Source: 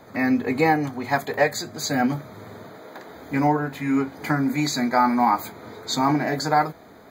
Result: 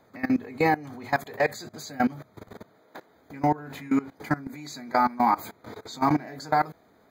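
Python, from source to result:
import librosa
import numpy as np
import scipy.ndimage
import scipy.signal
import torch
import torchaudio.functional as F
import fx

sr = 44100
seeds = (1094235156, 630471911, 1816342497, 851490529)

y = fx.level_steps(x, sr, step_db=20)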